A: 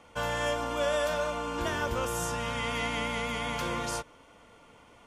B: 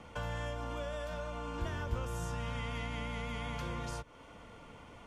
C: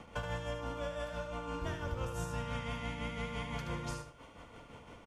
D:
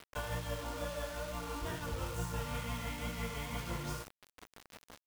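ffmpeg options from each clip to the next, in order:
-filter_complex "[0:a]acrossover=split=150[a][b];[b]acompressor=threshold=-42dB:ratio=6[c];[a][c]amix=inputs=2:normalize=0,highshelf=f=7.1k:g=-7.5,acrossover=split=200|1900[d][e][f];[d]acompressor=mode=upward:threshold=-51dB:ratio=2.5[g];[g][e][f]amix=inputs=3:normalize=0,volume=2dB"
-filter_complex "[0:a]tremolo=f=5.9:d=0.71,asplit=2[a][b];[b]aecho=0:1:75|150|225:0.501|0.11|0.0243[c];[a][c]amix=inputs=2:normalize=0,volume=2dB"
-af "flanger=delay=16:depth=4.5:speed=2.2,acrusher=bits=7:mix=0:aa=0.000001,volume=2dB"

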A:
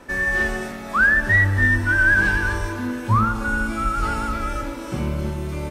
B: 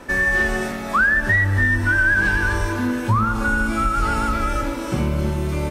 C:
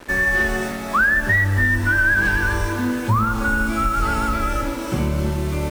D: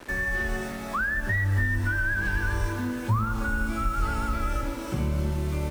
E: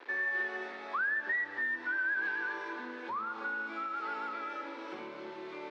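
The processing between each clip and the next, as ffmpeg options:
-af "acompressor=threshold=-21dB:ratio=3,volume=5dB"
-af "acrusher=bits=5:mix=0:aa=0.5"
-filter_complex "[0:a]acrossover=split=140[a][b];[b]acompressor=threshold=-35dB:ratio=1.5[c];[a][c]amix=inputs=2:normalize=0,volume=-3.5dB"
-af "highpass=f=380:w=0.5412,highpass=f=380:w=1.3066,equalizer=f=610:t=q:w=4:g=-8,equalizer=f=1.3k:t=q:w=4:g=-3,equalizer=f=2.9k:t=q:w=4:g=-5,lowpass=f=3.8k:w=0.5412,lowpass=f=3.8k:w=1.3066,volume=-3dB"

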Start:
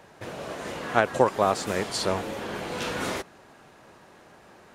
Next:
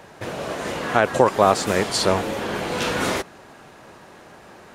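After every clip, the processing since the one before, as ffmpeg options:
-af "alimiter=level_in=8dB:limit=-1dB:release=50:level=0:latency=1,volume=-1dB"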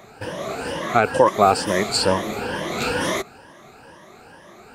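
-af "afftfilt=real='re*pow(10,13/40*sin(2*PI*(1.2*log(max(b,1)*sr/1024/100)/log(2)-(2.2)*(pts-256)/sr)))':imag='im*pow(10,13/40*sin(2*PI*(1.2*log(max(b,1)*sr/1024/100)/log(2)-(2.2)*(pts-256)/sr)))':win_size=1024:overlap=0.75,volume=-2dB"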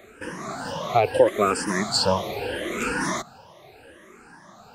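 -filter_complex "[0:a]asplit=2[a][b];[b]afreqshift=-0.77[c];[a][c]amix=inputs=2:normalize=1"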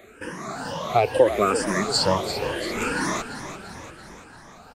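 -filter_complex "[0:a]asplit=8[a][b][c][d][e][f][g][h];[b]adelay=341,afreqshift=-45,volume=-10.5dB[i];[c]adelay=682,afreqshift=-90,volume=-15.1dB[j];[d]adelay=1023,afreqshift=-135,volume=-19.7dB[k];[e]adelay=1364,afreqshift=-180,volume=-24.2dB[l];[f]adelay=1705,afreqshift=-225,volume=-28.8dB[m];[g]adelay=2046,afreqshift=-270,volume=-33.4dB[n];[h]adelay=2387,afreqshift=-315,volume=-38dB[o];[a][i][j][k][l][m][n][o]amix=inputs=8:normalize=0"

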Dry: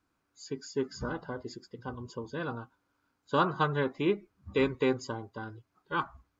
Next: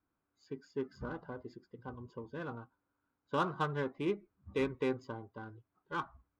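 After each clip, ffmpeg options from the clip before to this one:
-af "adynamicsmooth=sensitivity=4.5:basefreq=2.4k,volume=-6dB"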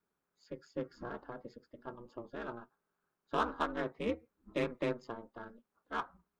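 -af "aeval=exprs='val(0)*sin(2*PI*120*n/s)':c=same,lowshelf=f=160:g=-9.5,volume=3.5dB"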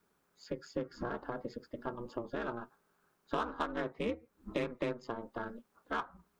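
-af "acompressor=threshold=-46dB:ratio=3,volume=10.5dB"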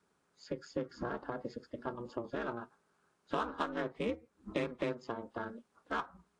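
-af "highpass=48" -ar 22050 -c:a aac -b:a 48k

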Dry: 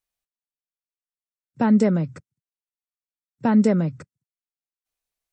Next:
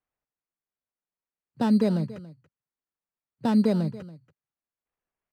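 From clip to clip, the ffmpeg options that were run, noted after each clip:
-af "acrusher=samples=10:mix=1:aa=0.000001,aemphasis=mode=reproduction:type=75fm,aecho=1:1:282:0.133,volume=-5dB"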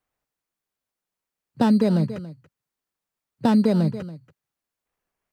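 -af "acompressor=threshold=-22dB:ratio=6,volume=7.5dB"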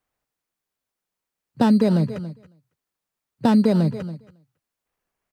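-af "aecho=1:1:270:0.0841,volume=1.5dB"

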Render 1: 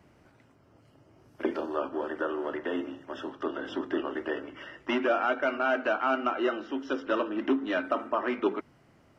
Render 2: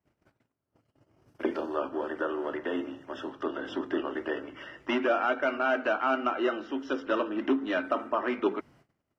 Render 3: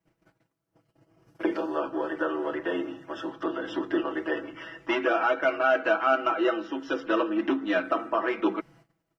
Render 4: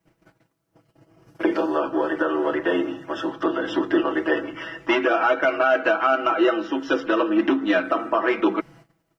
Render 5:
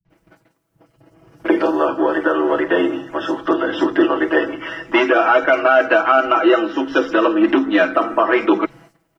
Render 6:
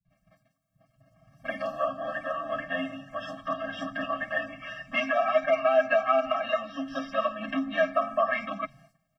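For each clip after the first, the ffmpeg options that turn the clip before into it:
-af "agate=range=-25dB:threshold=-57dB:ratio=16:detection=peak"
-af "aecho=1:1:6.1:0.98"
-af "alimiter=limit=-17dB:level=0:latency=1:release=143,volume=7.5dB"
-filter_complex "[0:a]acrossover=split=160|4900[a][b][c];[b]adelay=50[d];[c]adelay=100[e];[a][d][e]amix=inputs=3:normalize=0,volume=6dB"
-af "afftfilt=real='re*eq(mod(floor(b*sr/1024/260),2),0)':imag='im*eq(mod(floor(b*sr/1024/260),2),0)':win_size=1024:overlap=0.75,volume=-7.5dB"

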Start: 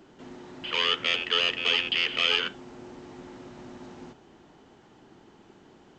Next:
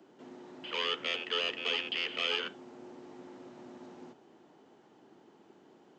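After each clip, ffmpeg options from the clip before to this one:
-filter_complex "[0:a]highpass=150,acrossover=split=250|910|1300[a][b][c][d];[b]acontrast=36[e];[a][e][c][d]amix=inputs=4:normalize=0,volume=-8.5dB"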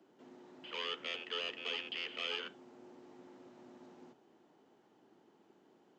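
-af "bandreject=f=50:t=h:w=6,bandreject=f=100:t=h:w=6,bandreject=f=150:t=h:w=6,volume=-7dB"

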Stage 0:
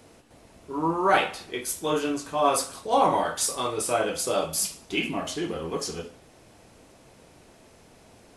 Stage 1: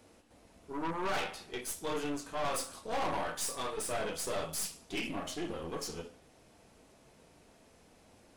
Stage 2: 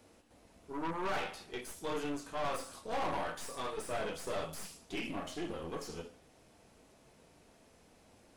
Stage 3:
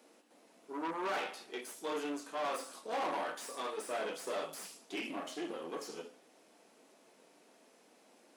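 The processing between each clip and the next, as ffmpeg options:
-af "flanger=delay=3.5:depth=1.3:regen=-69:speed=0.36:shape=triangular,aeval=exprs='(tanh(35.5*val(0)+0.65)-tanh(0.65))/35.5':c=same"
-filter_complex "[0:a]acrossover=split=2700[a][b];[b]acompressor=threshold=-44dB:ratio=4:attack=1:release=60[c];[a][c]amix=inputs=2:normalize=0,volume=-1.5dB"
-af "highpass=f=240:w=0.5412,highpass=f=240:w=1.3066"

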